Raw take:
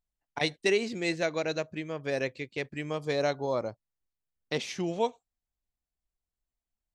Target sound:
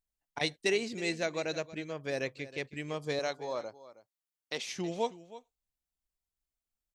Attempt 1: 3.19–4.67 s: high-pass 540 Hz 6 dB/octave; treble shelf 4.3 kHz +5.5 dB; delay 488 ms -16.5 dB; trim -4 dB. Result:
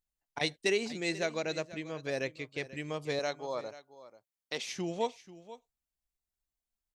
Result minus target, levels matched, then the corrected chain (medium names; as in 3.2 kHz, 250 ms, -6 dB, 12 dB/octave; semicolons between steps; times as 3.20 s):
echo 169 ms late
3.19–4.67 s: high-pass 540 Hz 6 dB/octave; treble shelf 4.3 kHz +5.5 dB; delay 319 ms -16.5 dB; trim -4 dB